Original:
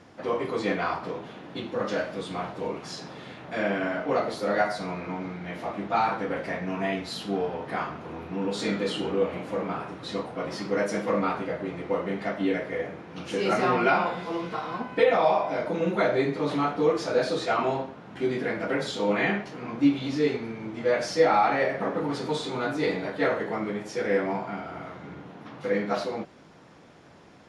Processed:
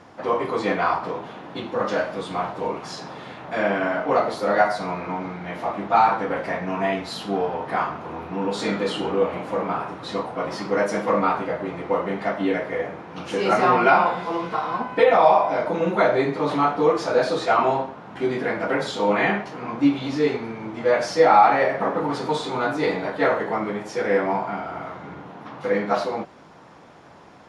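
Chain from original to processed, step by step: peaking EQ 940 Hz +7 dB 1.3 oct; trim +2 dB

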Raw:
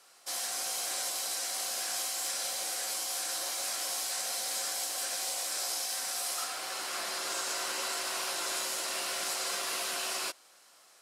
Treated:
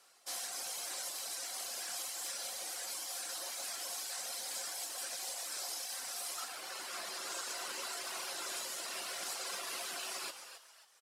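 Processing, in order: reverb removal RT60 1.3 s; short-mantissa float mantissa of 4-bit; frequency-shifting echo 270 ms, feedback 35%, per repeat +140 Hz, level -10.5 dB; on a send at -14 dB: reverberation RT60 0.65 s, pre-delay 98 ms; on the sum: trim -4.5 dB

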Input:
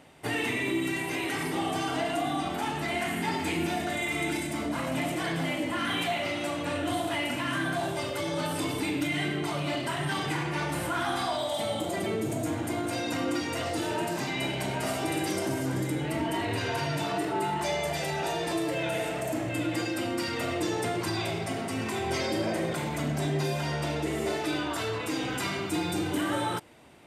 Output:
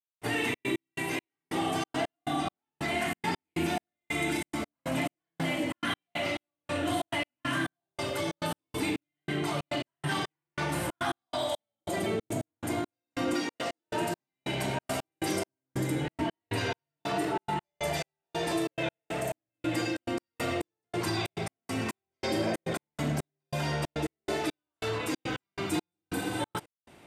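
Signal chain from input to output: 13.33–13.88 s: high-pass 160 Hz 24 dB/octave; 26.13–26.37 s: spectral replace 300–6900 Hz before; trance gate "..xxx.x..xx." 139 bpm -60 dB

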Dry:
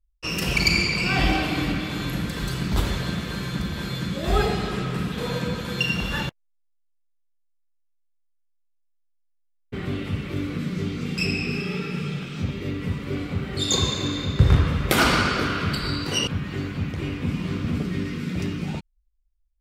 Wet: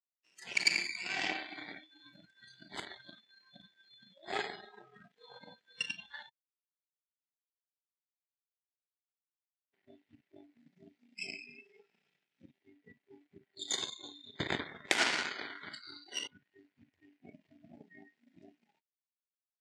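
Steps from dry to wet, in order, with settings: power-law waveshaper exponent 2; spectral noise reduction 23 dB; cabinet simulation 450–8400 Hz, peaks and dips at 510 Hz -8 dB, 1.2 kHz -10 dB, 1.9 kHz +6 dB

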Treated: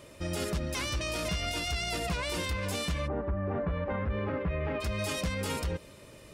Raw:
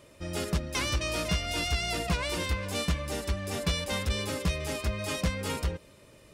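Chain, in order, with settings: 3.06–4.80 s: low-pass 1.3 kHz -> 2.2 kHz 24 dB/octave; peak limiter -28 dBFS, peak gain reduction 9 dB; trim +4 dB

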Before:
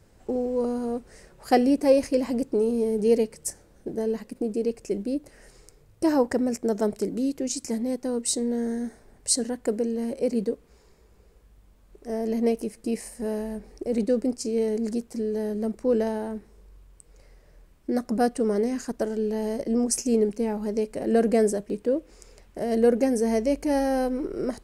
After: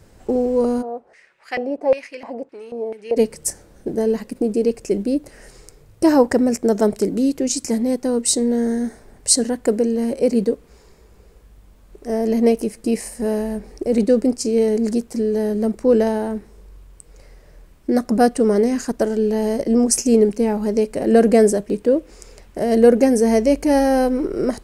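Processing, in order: 0.81–3.16 s: LFO band-pass square 0.86 Hz -> 2.9 Hz 710–2200 Hz; trim +8 dB

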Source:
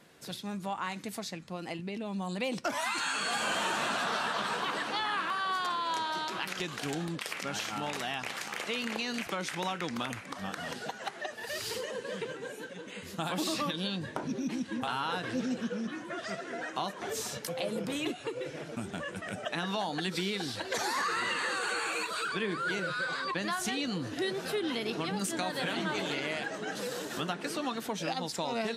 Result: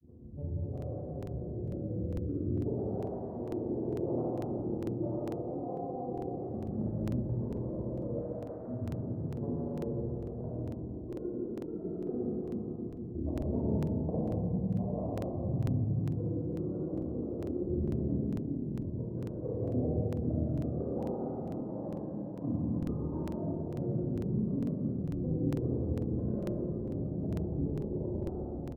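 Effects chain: tape stop on the ending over 2.42 s; hum notches 60/120/180/240/300/360/420/480/540 Hz; reverse; upward compressor, threshold -37 dBFS; reverse; granulator; elliptic band-pass 120–790 Hz, stop band 60 dB; pitch shift -10.5 st; granulator, pitch spread up and down by 7 st; on a send: delay 167 ms -6 dB; on the sum: Schroeder reverb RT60 2.5 s, combs from 25 ms, DRR -6 dB; crackling interface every 0.45 s, samples 2048, repeat, from 0.73 s

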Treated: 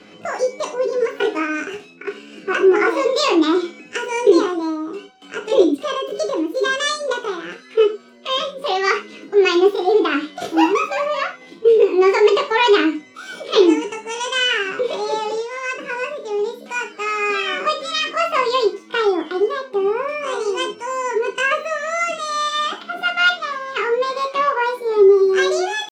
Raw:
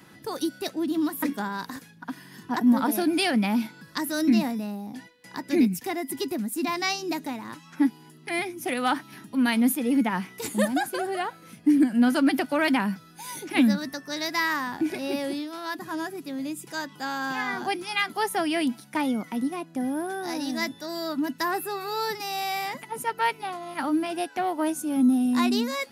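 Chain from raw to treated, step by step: pre-echo 35 ms -23 dB; pitch shift +7.5 st; low-pass 4.5 kHz 12 dB/octave; gated-style reverb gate 120 ms falling, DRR 2.5 dB; trim +6.5 dB

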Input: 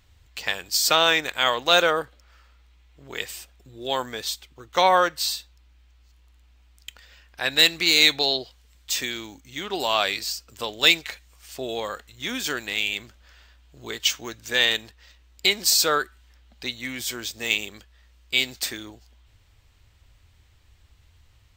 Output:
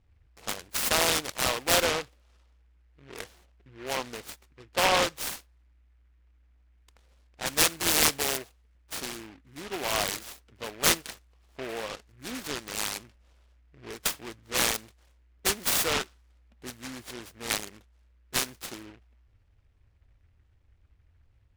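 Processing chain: level-controlled noise filter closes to 800 Hz, open at -18 dBFS; delay time shaken by noise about 1.7 kHz, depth 0.17 ms; trim -5.5 dB

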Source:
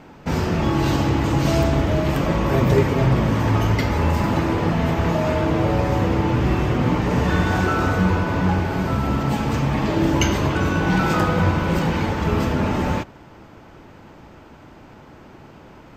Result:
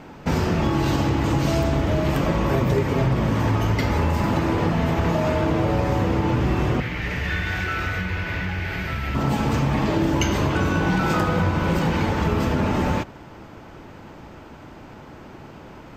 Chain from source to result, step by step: compression 4:1, threshold -20 dBFS, peak gain reduction 8 dB; 6.80–9.15 s: ten-band graphic EQ 125 Hz -5 dB, 250 Hz -11 dB, 500 Hz -6 dB, 1 kHz -12 dB, 2 kHz +10 dB, 8 kHz -7 dB; trim +2.5 dB

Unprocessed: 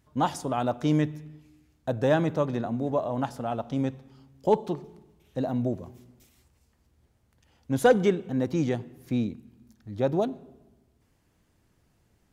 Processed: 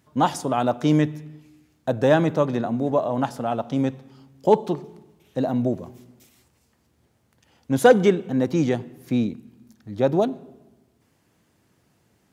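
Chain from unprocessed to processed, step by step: high-pass 120 Hz 12 dB/octave; trim +5.5 dB

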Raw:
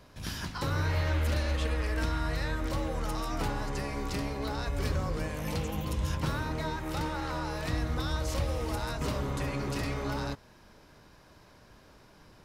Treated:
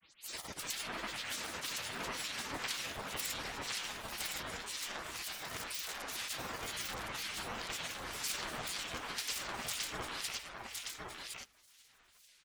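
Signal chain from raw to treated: tape start-up on the opening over 0.30 s; high-pass 220 Hz 6 dB/octave; bass shelf 370 Hz -6 dB; spectral gate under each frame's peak -15 dB weak; granulator, pitch spread up and down by 12 st; harmonic tremolo 2 Hz, depth 70%, crossover 1.9 kHz; on a send: delay 1063 ms -3.5 dB; on the sum: trim +8.5 dB

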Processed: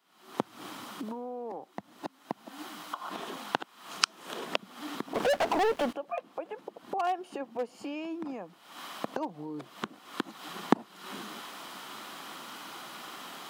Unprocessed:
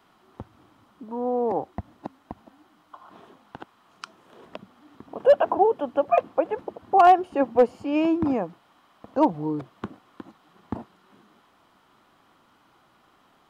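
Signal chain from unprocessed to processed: recorder AGC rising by 73 dB/s; high-pass 160 Hz 24 dB/octave; treble shelf 2.1 kHz +12 dB; 5.14–5.93 s: waveshaping leveller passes 5; trim -17 dB

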